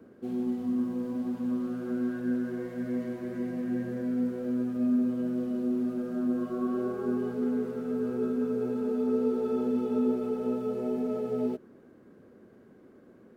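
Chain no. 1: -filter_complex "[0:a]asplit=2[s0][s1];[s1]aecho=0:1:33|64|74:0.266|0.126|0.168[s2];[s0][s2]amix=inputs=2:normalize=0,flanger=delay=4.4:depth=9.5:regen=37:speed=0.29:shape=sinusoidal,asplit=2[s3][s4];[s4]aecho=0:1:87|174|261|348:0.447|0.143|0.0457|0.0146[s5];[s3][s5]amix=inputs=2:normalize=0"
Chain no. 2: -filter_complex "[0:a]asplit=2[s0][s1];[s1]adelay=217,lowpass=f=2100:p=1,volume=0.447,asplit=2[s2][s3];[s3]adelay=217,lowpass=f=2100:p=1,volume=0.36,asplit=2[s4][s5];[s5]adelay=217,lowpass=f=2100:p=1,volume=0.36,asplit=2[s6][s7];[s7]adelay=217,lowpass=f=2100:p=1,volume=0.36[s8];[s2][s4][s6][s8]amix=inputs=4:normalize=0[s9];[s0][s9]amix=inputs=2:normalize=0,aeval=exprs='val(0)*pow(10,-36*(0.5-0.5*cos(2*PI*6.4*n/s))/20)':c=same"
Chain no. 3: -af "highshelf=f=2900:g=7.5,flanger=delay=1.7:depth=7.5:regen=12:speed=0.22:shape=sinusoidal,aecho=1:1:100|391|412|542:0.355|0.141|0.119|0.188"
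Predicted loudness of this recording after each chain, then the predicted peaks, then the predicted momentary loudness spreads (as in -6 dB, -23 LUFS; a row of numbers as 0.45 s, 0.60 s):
-34.5 LUFS, -36.5 LUFS, -33.0 LUFS; -20.5 dBFS, -18.0 dBFS, -18.0 dBFS; 6 LU, 7 LU, 7 LU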